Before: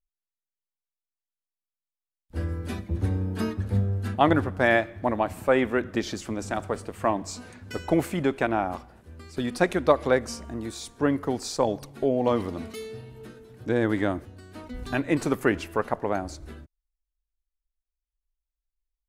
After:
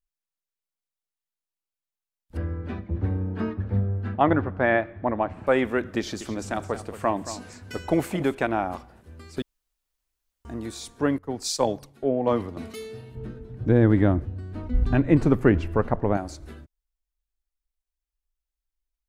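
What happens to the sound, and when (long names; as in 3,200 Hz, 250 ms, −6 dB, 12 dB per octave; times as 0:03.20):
0:02.37–0:05.47: low-pass filter 2,100 Hz
0:05.98–0:08.35: single-tap delay 225 ms −13 dB
0:09.42–0:10.45: fill with room tone
0:11.18–0:12.57: multiband upward and downward expander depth 100%
0:13.15–0:16.17: RIAA equalisation playback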